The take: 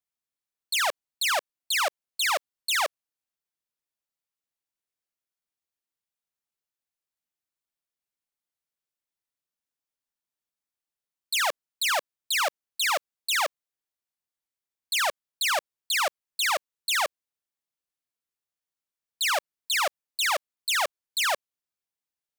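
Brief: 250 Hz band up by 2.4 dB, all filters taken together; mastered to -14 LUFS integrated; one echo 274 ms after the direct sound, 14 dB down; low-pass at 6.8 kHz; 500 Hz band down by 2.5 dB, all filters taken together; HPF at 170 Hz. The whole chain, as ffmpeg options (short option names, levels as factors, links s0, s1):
-af "highpass=170,lowpass=6800,equalizer=f=250:t=o:g=6.5,equalizer=f=500:t=o:g=-4.5,aecho=1:1:274:0.2,volume=4.73"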